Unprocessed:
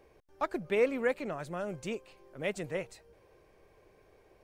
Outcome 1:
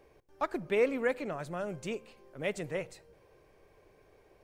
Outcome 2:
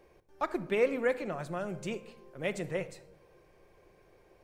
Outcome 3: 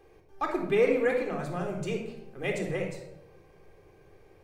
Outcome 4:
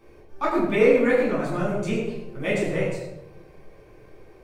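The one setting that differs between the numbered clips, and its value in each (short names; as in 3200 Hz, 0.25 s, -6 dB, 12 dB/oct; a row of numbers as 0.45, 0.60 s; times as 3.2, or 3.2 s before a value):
shoebox room, microphone at: 0.3, 0.89, 3.8, 12 m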